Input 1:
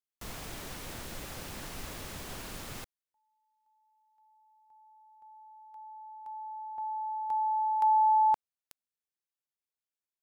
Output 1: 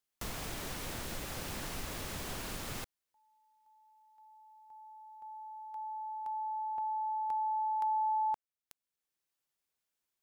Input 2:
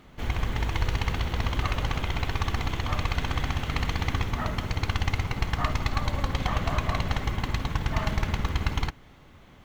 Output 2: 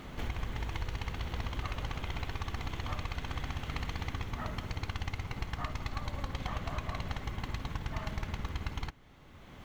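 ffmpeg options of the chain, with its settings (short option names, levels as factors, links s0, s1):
-af "acompressor=threshold=0.00794:ratio=3:attack=5.8:release=702:detection=rms,volume=2.11"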